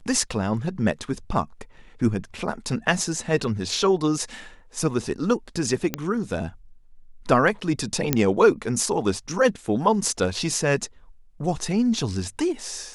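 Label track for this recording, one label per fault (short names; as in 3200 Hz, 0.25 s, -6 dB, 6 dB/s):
5.940000	5.940000	pop -9 dBFS
8.130000	8.130000	pop -3 dBFS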